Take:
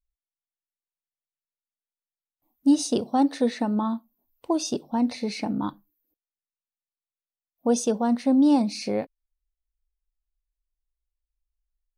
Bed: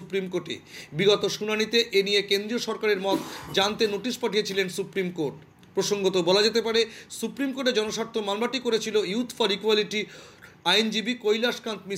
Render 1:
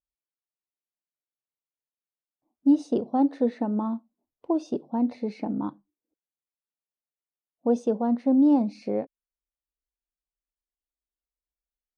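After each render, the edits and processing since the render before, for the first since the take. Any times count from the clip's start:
resonant band-pass 370 Hz, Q 0.63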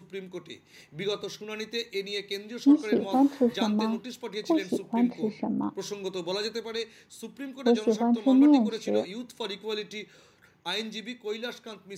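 mix in bed −10.5 dB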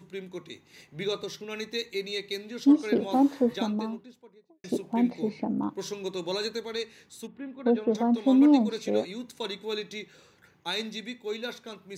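0:03.22–0:04.64: fade out and dull
0:07.27–0:07.95: high-frequency loss of the air 500 metres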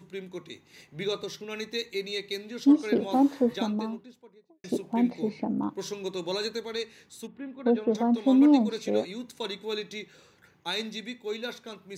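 no processing that can be heard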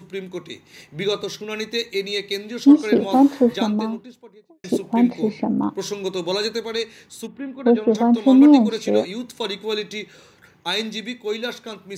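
level +8 dB

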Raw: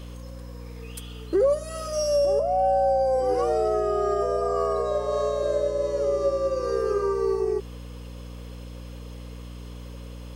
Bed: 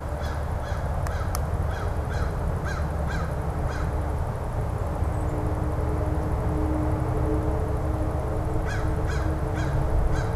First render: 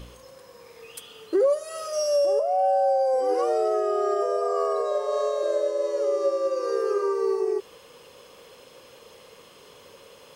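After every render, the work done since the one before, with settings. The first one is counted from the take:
hum removal 60 Hz, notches 5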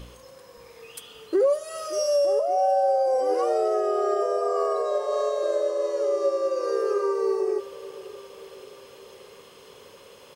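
repeating echo 575 ms, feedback 57%, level −17 dB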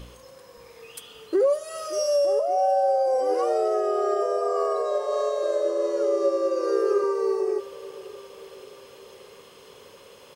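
0:05.64–0:07.04: hollow resonant body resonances 340/1,400 Hz, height 9 dB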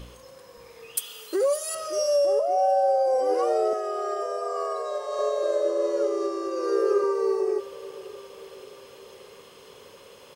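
0:00.97–0:01.75: RIAA equalisation recording
0:03.73–0:05.19: high-pass filter 850 Hz 6 dB per octave
0:06.07–0:06.78: notch filter 550 Hz, Q 7.2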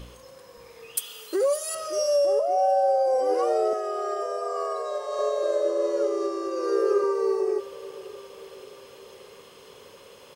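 no processing that can be heard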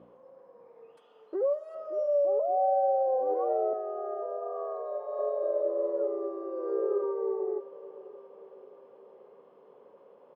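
Chebyshev band-pass filter 190–750 Hz, order 2
low-shelf EQ 460 Hz −10 dB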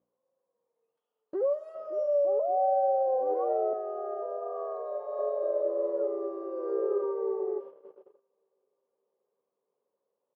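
noise gate −43 dBFS, range −27 dB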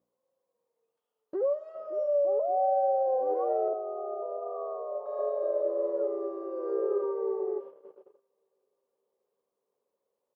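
0:01.36–0:03.06: high-frequency loss of the air 83 metres
0:03.68–0:05.06: elliptic band-pass filter 310–1,200 Hz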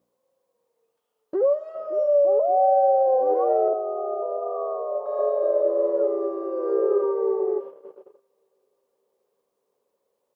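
level +7.5 dB

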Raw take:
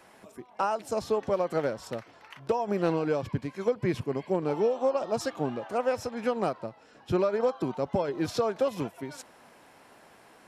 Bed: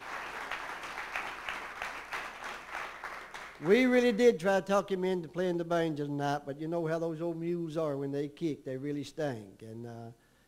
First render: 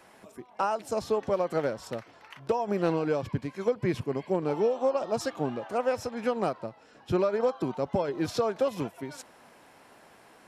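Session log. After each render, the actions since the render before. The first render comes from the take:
no processing that can be heard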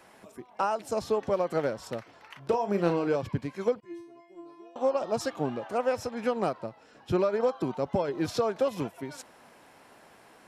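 0:02.44–0:03.16: double-tracking delay 35 ms −9 dB
0:03.80–0:04.76: stiff-string resonator 340 Hz, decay 0.67 s, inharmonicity 0.002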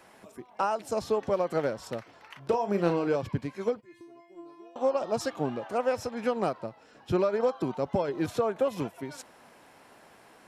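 0:03.54–0:04.01: notch comb filter 170 Hz
0:08.26–0:08.70: parametric band 5,000 Hz −11.5 dB 0.68 octaves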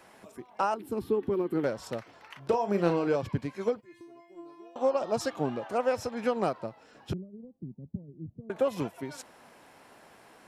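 0:00.74–0:01.64: drawn EQ curve 160 Hz 0 dB, 370 Hz +9 dB, 600 Hz −19 dB, 880 Hz −8 dB, 3,400 Hz −7 dB, 6,400 Hz −21 dB, 12,000 Hz +1 dB
0:07.13–0:08.50: transistor ladder low-pass 240 Hz, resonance 30%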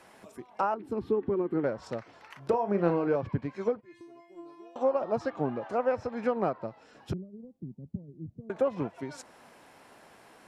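treble cut that deepens with the level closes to 2,600 Hz, closed at −27 dBFS
dynamic equaliser 3,200 Hz, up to −6 dB, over −56 dBFS, Q 1.6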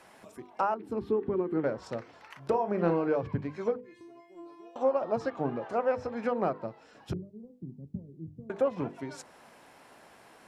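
mains-hum notches 50/100/150/200/250/300/350/400/450/500 Hz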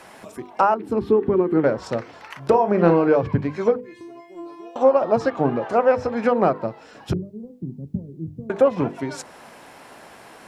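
level +11 dB

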